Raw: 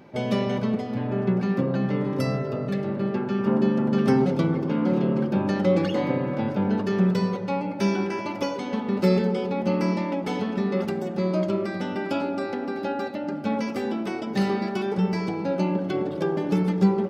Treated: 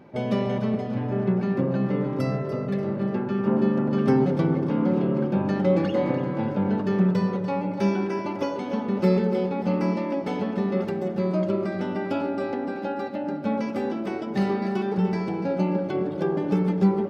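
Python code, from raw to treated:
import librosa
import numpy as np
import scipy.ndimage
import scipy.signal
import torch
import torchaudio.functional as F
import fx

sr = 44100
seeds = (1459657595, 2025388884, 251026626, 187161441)

p1 = fx.high_shelf(x, sr, hz=2800.0, db=-8.5)
y = p1 + fx.echo_feedback(p1, sr, ms=292, feedback_pct=43, wet_db=-11.5, dry=0)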